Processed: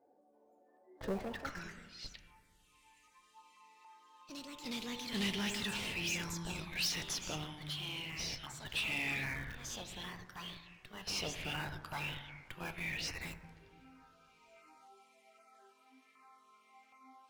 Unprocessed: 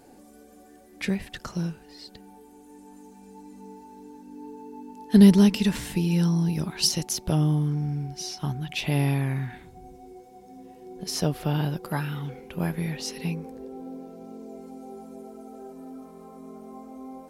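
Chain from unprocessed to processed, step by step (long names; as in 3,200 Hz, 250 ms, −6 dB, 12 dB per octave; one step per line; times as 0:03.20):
band-pass filter sweep 610 Hz → 2,400 Hz, 0:01.12–0:01.64
noise reduction from a noise print of the clip's start 17 dB
in parallel at −6 dB: comparator with hysteresis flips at −44.5 dBFS
on the sum: auto-filter notch saw down 1.3 Hz 970–3,700 Hz
soft clipping −37 dBFS, distortion −10 dB
on a send at −8.5 dB: convolution reverb RT60 1.8 s, pre-delay 5 ms
on the sum: delay with pitch and tempo change per echo 333 ms, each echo +3 semitones, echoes 2, each echo −6 dB
level +6 dB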